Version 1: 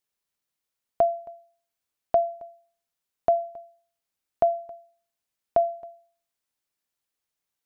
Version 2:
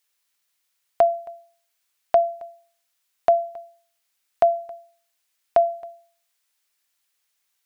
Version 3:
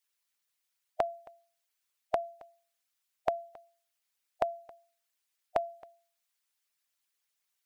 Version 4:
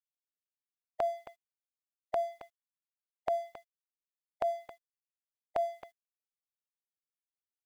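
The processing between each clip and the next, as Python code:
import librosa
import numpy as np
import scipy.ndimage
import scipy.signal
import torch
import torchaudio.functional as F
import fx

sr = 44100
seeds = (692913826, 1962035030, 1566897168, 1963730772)

y1 = fx.curve_eq(x, sr, hz=(110.0, 150.0, 2000.0), db=(0, -4, 14))
y1 = y1 * 10.0 ** (-2.5 / 20.0)
y2 = fx.hpss(y1, sr, part='harmonic', gain_db=-14)
y2 = y2 * 10.0 ** (-4.0 / 20.0)
y3 = np.sign(y2) * np.maximum(np.abs(y2) - 10.0 ** (-59.0 / 20.0), 0.0)
y3 = fx.transient(y3, sr, attack_db=-8, sustain_db=5)
y3 = y3 * 10.0 ** (3.0 / 20.0)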